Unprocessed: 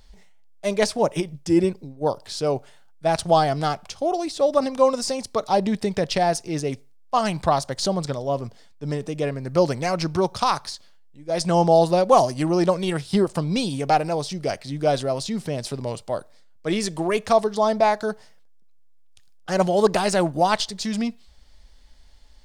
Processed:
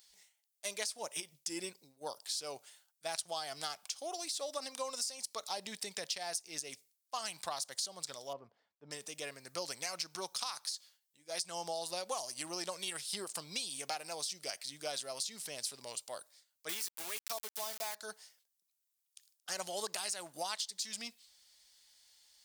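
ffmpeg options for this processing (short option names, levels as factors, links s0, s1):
-filter_complex "[0:a]asettb=1/sr,asplit=3[s0][s1][s2];[s0]atrim=end=8.334[s3];[s1]atrim=start=8.33:end=8.91,asetpts=PTS-STARTPTS,afade=t=in:d=0.004:c=qsin,afade=t=out:st=0.576:d=0.004:c=qsin,lowpass=1100[s4];[s2]atrim=start=8.906[s5];[s3][s4]acrossfade=d=0.004:c1=hsin:c2=qsin[s6];[s6][s5]acrossfade=d=0.004:c1=qsin:c2=hsin,asettb=1/sr,asplit=3[s7][s8][s9];[s7]atrim=end=16.694[s10];[s8]atrim=start=16.69:end=17.95,asetpts=PTS-STARTPTS,afade=t=in:d=0.004:c=qsin,afade=t=out:st=1.256:d=0.004:c=qsin,aeval=exprs='val(0)*gte(abs(val(0)),0.0562)':c=same[s11];[s9]atrim=start=17.946[s12];[s10][s11]acrossfade=d=0.004:c1=hsin:c2=qsin[s13];[s13][s12]acrossfade=d=0.004:c1=qsin:c2=hsin,aderivative,acompressor=threshold=0.0141:ratio=10,volume=1.33"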